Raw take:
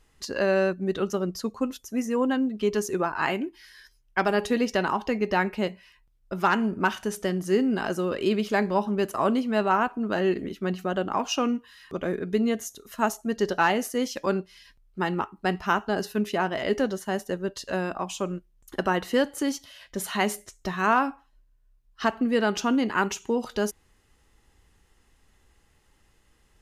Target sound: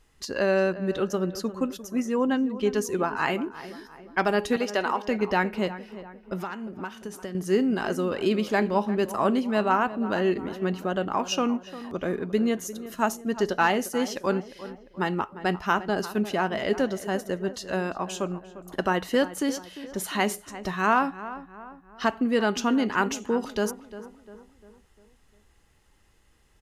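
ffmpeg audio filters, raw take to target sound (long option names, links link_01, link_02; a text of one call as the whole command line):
ffmpeg -i in.wav -filter_complex "[0:a]asettb=1/sr,asplit=3[link_01][link_02][link_03];[link_01]atrim=end=1.964[link_04];[link_02]atrim=start=1.96:end=2.77,asetpts=PTS-STARTPTS,afade=type=in:duration=0.004:curve=qsin,afade=type=out:start_time=0.806:duration=0.004:curve=qsin,highshelf=frequency=11000:gain=-8.5[link_05];[link_03]atrim=start=2.766[link_06];[link_04][link_05]acrossfade=duration=0.004:curve1=hsin:curve2=qsin[link_07];[link_07][link_06]acrossfade=duration=0.004:curve1=qsin:curve2=hsin,asettb=1/sr,asplit=3[link_08][link_09][link_10];[link_08]atrim=end=4.564[link_11];[link_09]atrim=start=4.56:end=5.08,asetpts=PTS-STARTPTS,afade=type=in:duration=0.004:curve=qsin,afade=type=out:start_time=0.516:duration=0.004:curve=qsin,highpass=340[link_12];[link_10]atrim=start=5.076[link_13];[link_11][link_12]acrossfade=duration=0.004:curve1=hsin:curve2=qsin[link_14];[link_14][link_13]acrossfade=duration=0.004:curve1=qsin:curve2=hsin,asettb=1/sr,asplit=3[link_15][link_16][link_17];[link_15]atrim=end=6.414[link_18];[link_16]atrim=start=6.41:end=7.35,asetpts=PTS-STARTPTS,afade=type=in:duration=0.004:curve=qsin,afade=type=out:start_time=0.936:duration=0.004:curve=qsin,acompressor=threshold=-34dB:ratio=4[link_19];[link_17]atrim=start=7.346[link_20];[link_18][link_19]acrossfade=duration=0.004:curve1=hsin:curve2=qsin[link_21];[link_21][link_20]acrossfade=duration=0.004:curve1=qsin:curve2=hsin,asplit=2[link_22][link_23];[link_23]adelay=350,lowpass=frequency=2000:poles=1,volume=-14dB,asplit=2[link_24][link_25];[link_25]adelay=350,lowpass=frequency=2000:poles=1,volume=0.49,asplit=2[link_26][link_27];[link_27]adelay=350,lowpass=frequency=2000:poles=1,volume=0.49,asplit=2[link_28][link_29];[link_29]adelay=350,lowpass=frequency=2000:poles=1,volume=0.49,asplit=2[link_30][link_31];[link_31]adelay=350,lowpass=frequency=2000:poles=1,volume=0.49[link_32];[link_22][link_24][link_26][link_28][link_30][link_32]amix=inputs=6:normalize=0" out.wav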